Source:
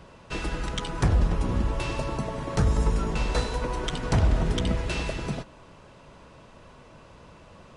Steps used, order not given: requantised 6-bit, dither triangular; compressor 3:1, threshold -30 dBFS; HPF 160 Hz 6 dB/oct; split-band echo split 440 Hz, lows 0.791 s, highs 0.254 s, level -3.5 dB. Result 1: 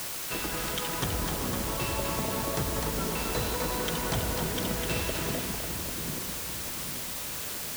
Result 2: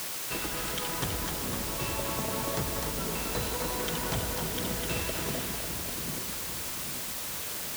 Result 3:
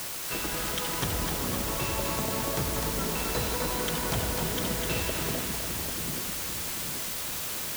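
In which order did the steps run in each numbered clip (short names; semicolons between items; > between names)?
HPF > compressor > split-band echo > requantised; compressor > split-band echo > requantised > HPF; HPF > compressor > requantised > split-band echo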